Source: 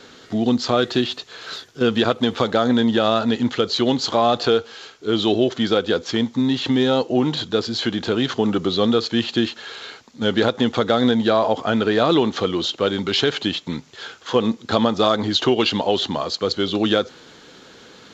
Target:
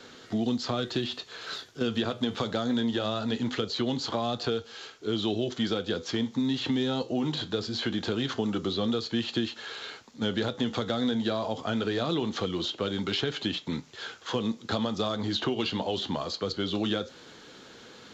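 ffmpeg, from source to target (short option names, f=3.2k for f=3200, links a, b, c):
-filter_complex "[0:a]flanger=delay=8.3:depth=4:regen=-71:speed=0.22:shape=sinusoidal,acrossover=split=220|3300[a][b][c];[a]acompressor=threshold=-31dB:ratio=4[d];[b]acompressor=threshold=-30dB:ratio=4[e];[c]acompressor=threshold=-37dB:ratio=4[f];[d][e][f]amix=inputs=3:normalize=0"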